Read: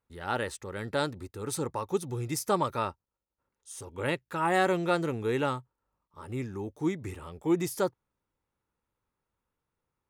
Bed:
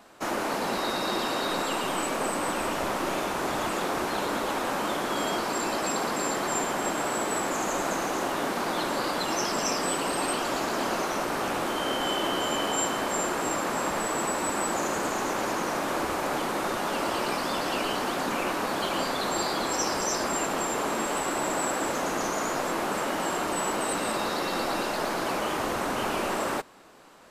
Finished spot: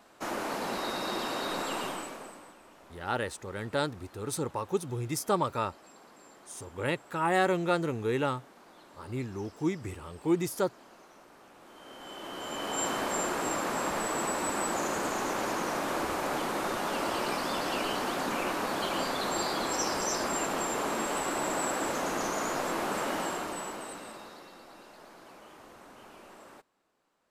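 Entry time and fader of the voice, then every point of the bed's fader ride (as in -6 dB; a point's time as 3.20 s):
2.80 s, -0.5 dB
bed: 1.84 s -5 dB
2.59 s -26.5 dB
11.55 s -26.5 dB
12.89 s -3 dB
23.17 s -3 dB
24.60 s -23 dB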